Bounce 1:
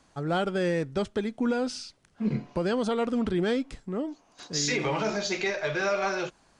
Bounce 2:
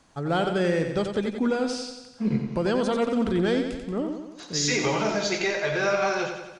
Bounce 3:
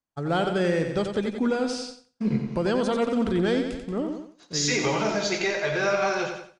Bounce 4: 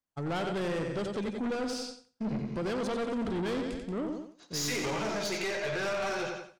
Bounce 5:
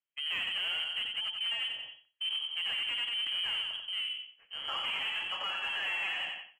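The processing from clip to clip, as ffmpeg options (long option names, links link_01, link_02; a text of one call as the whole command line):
ffmpeg -i in.wav -af "aecho=1:1:90|180|270|360|450|540|630:0.447|0.255|0.145|0.0827|0.0472|0.0269|0.0153,volume=2dB" out.wav
ffmpeg -i in.wav -af "agate=range=-33dB:threshold=-33dB:ratio=3:detection=peak" out.wav
ffmpeg -i in.wav -af "aeval=exprs='(tanh(22.4*val(0)+0.2)-tanh(0.2))/22.4':channel_layout=same,volume=-2dB" out.wav
ffmpeg -i in.wav -af "lowpass=frequency=2800:width_type=q:width=0.5098,lowpass=frequency=2800:width_type=q:width=0.6013,lowpass=frequency=2800:width_type=q:width=0.9,lowpass=frequency=2800:width_type=q:width=2.563,afreqshift=-3300,aeval=exprs='0.0891*(cos(1*acos(clip(val(0)/0.0891,-1,1)))-cos(1*PI/2))+0.00158*(cos(7*acos(clip(val(0)/0.0891,-1,1)))-cos(7*PI/2))':channel_layout=same,volume=-2dB" out.wav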